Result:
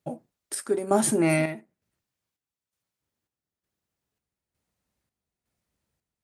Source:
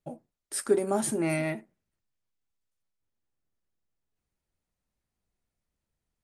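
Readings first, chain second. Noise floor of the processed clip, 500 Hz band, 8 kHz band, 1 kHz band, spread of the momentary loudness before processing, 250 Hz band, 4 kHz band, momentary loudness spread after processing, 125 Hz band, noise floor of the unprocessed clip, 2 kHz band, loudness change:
under -85 dBFS, +2.5 dB, +4.0 dB, +5.5 dB, 12 LU, +5.0 dB, +3.5 dB, 19 LU, +5.0 dB, under -85 dBFS, +4.5 dB, +4.0 dB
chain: high-pass 68 Hz; square tremolo 1.1 Hz, depth 60%, duty 60%; trim +6 dB

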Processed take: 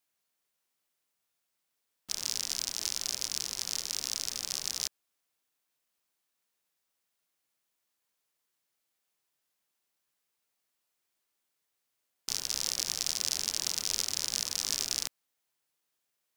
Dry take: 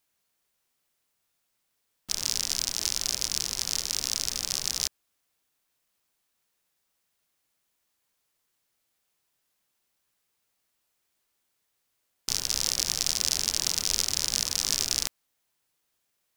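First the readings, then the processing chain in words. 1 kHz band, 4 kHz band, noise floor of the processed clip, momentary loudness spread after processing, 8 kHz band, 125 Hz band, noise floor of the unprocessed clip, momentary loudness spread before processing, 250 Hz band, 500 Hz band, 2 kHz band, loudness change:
-5.0 dB, -5.0 dB, -82 dBFS, 5 LU, -5.0 dB, -9.5 dB, -78 dBFS, 5 LU, -6.5 dB, -5.5 dB, -5.0 dB, -5.0 dB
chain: bass shelf 110 Hz -9.5 dB; trim -5 dB

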